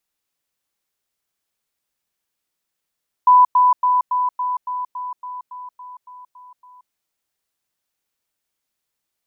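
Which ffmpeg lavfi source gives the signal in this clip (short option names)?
-f lavfi -i "aevalsrc='pow(10,(-7-3*floor(t/0.28))/20)*sin(2*PI*996*t)*clip(min(mod(t,0.28),0.18-mod(t,0.28))/0.005,0,1)':d=3.64:s=44100"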